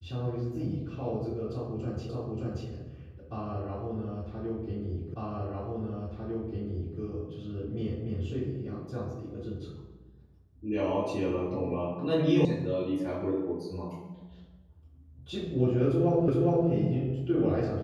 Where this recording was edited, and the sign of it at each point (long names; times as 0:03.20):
0:02.09: the same again, the last 0.58 s
0:05.14: the same again, the last 1.85 s
0:12.45: cut off before it has died away
0:16.28: the same again, the last 0.41 s